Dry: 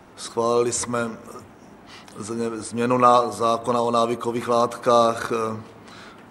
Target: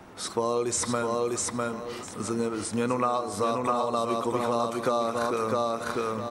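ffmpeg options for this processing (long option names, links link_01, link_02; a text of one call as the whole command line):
ffmpeg -i in.wav -filter_complex "[0:a]asplit=2[link_01][link_02];[link_02]aecho=0:1:652|1304|1956:0.631|0.114|0.0204[link_03];[link_01][link_03]amix=inputs=2:normalize=0,acompressor=threshold=-23dB:ratio=6" out.wav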